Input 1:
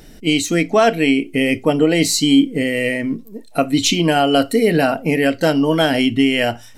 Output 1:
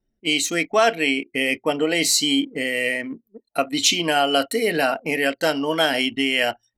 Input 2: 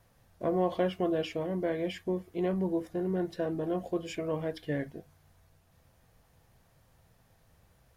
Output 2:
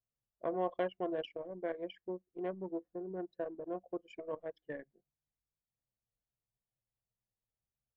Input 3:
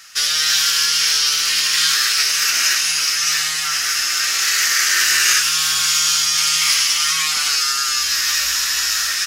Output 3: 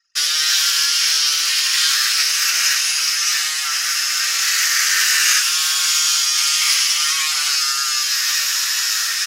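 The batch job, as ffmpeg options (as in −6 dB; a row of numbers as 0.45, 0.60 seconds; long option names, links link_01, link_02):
-af "highpass=frequency=800:poles=1,anlmdn=6.31"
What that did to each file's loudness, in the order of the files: −4.0, −8.5, 0.0 LU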